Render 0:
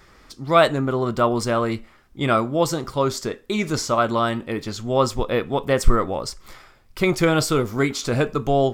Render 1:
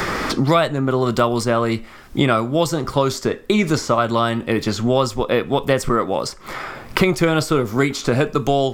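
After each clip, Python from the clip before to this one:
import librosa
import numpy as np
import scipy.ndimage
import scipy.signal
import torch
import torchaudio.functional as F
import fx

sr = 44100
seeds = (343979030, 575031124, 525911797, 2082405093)

y = fx.band_squash(x, sr, depth_pct=100)
y = y * librosa.db_to_amplitude(2.0)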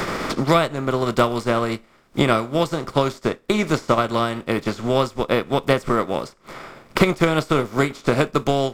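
y = fx.bin_compress(x, sr, power=0.6)
y = fx.upward_expand(y, sr, threshold_db=-29.0, expansion=2.5)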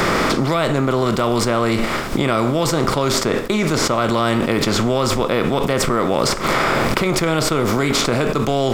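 y = fx.env_flatten(x, sr, amount_pct=100)
y = y * librosa.db_to_amplitude(-6.5)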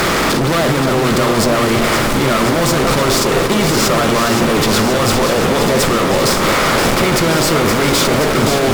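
y = fx.fuzz(x, sr, gain_db=30.0, gate_db=-33.0)
y = fx.echo_alternate(y, sr, ms=262, hz=1000.0, feedback_pct=87, wet_db=-6.0)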